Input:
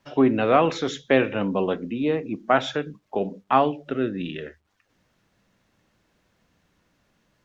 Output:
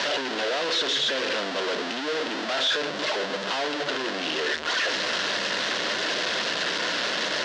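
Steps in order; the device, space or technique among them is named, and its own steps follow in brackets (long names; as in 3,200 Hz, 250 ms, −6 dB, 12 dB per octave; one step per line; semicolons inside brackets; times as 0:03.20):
home computer beeper (sign of each sample alone; loudspeaker in its box 600–4,900 Hz, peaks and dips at 820 Hz −10 dB, 1,200 Hz −7 dB, 2,300 Hz −7 dB)
level +5.5 dB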